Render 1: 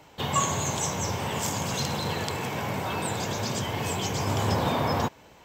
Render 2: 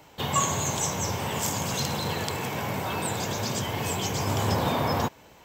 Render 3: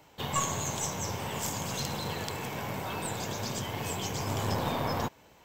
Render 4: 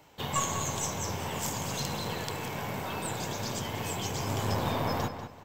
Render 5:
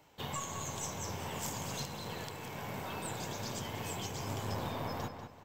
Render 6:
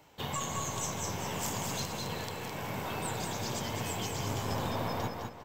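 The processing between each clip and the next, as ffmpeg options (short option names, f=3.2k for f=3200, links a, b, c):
-af "highshelf=f=11k:g=7.5"
-af "aeval=exprs='0.355*(cos(1*acos(clip(val(0)/0.355,-1,1)))-cos(1*PI/2))+0.0398*(cos(4*acos(clip(val(0)/0.355,-1,1)))-cos(4*PI/2))':c=same,volume=-5.5dB"
-filter_complex "[0:a]asplit=2[a][b];[b]adelay=193,lowpass=f=4.2k:p=1,volume=-9dB,asplit=2[c][d];[d]adelay=193,lowpass=f=4.2k:p=1,volume=0.31,asplit=2[e][f];[f]adelay=193,lowpass=f=4.2k:p=1,volume=0.31,asplit=2[g][h];[h]adelay=193,lowpass=f=4.2k:p=1,volume=0.31[i];[a][c][e][g][i]amix=inputs=5:normalize=0"
-af "alimiter=limit=-20dB:level=0:latency=1:release=483,volume=-5.5dB"
-af "aecho=1:1:210:0.501,volume=3.5dB"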